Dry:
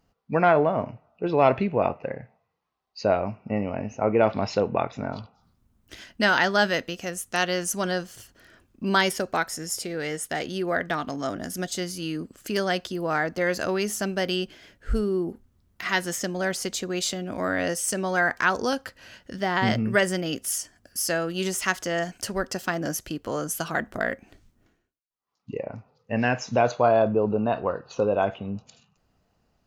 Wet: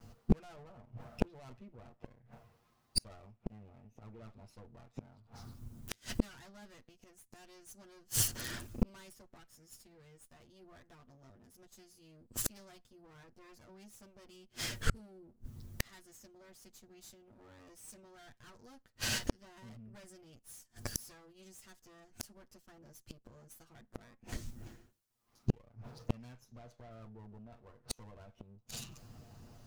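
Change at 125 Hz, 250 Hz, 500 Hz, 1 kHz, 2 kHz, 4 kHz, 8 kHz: -11.0, -16.0, -26.5, -27.0, -23.0, -13.0, -10.5 dB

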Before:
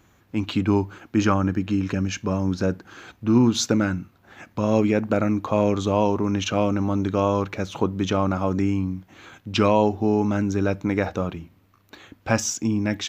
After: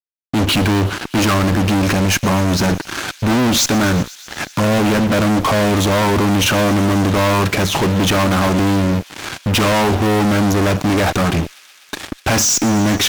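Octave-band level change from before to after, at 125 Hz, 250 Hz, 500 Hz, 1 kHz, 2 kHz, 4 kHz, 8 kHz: +8.5, +6.0, +5.0, +9.0, +13.0, +13.5, +13.0 dB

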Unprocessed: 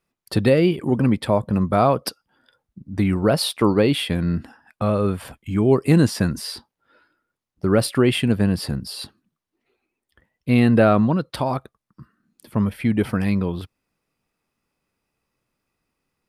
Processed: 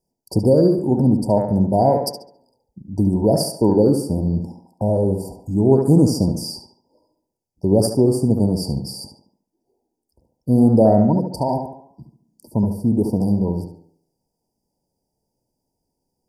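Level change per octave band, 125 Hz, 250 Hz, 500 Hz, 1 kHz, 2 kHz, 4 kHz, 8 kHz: +2.0 dB, +2.5 dB, +3.0 dB, +0.5 dB, under -25 dB, -4.5 dB, +1.5 dB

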